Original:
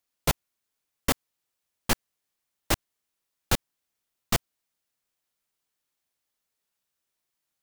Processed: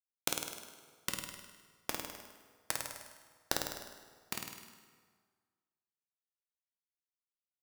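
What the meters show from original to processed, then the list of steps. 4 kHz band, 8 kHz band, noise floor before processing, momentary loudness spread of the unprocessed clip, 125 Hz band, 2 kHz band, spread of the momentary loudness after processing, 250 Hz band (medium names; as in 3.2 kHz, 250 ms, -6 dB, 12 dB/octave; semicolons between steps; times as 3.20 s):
-7.5 dB, -6.0 dB, -83 dBFS, 3 LU, -19.5 dB, -8.5 dB, 19 LU, -14.0 dB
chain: spectral gate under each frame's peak -30 dB strong; high-pass 210 Hz 12 dB/octave; band-stop 1.2 kHz, Q 6.9; compression 6:1, threshold -38 dBFS, peak gain reduction 16.5 dB; power-law waveshaper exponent 3; on a send: flutter echo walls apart 8.8 m, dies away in 0.89 s; on the sum: plate-style reverb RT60 1.6 s, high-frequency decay 0.8×, DRR 6 dB; trim +15 dB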